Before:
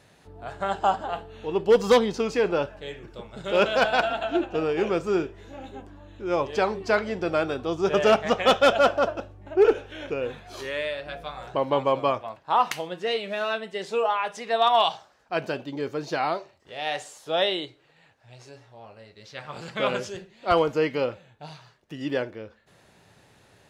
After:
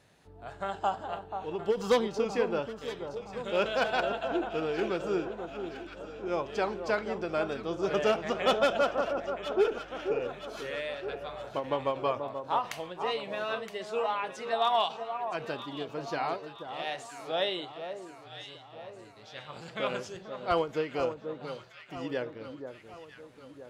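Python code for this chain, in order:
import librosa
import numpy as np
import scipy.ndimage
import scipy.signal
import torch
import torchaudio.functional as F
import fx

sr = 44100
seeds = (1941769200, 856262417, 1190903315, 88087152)

y = fx.echo_alternate(x, sr, ms=484, hz=1300.0, feedback_pct=69, wet_db=-8.0)
y = fx.end_taper(y, sr, db_per_s=200.0)
y = y * 10.0 ** (-6.5 / 20.0)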